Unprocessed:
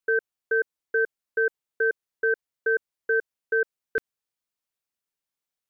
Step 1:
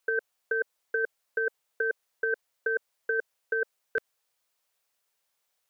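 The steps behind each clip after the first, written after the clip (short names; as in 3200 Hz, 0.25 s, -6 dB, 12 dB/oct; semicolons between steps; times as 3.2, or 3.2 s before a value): resonant low shelf 400 Hz -7.5 dB, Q 1.5; negative-ratio compressor -30 dBFS, ratio -1; gain +3 dB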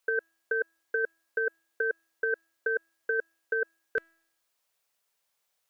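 resonator 330 Hz, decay 0.71 s, mix 50%; gain +5.5 dB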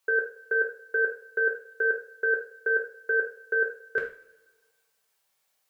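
reverb, pre-delay 3 ms, DRR -2 dB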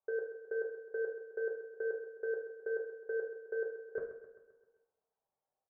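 ladder low-pass 990 Hz, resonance 30%; feedback echo 0.131 s, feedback 55%, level -12 dB; gain -1 dB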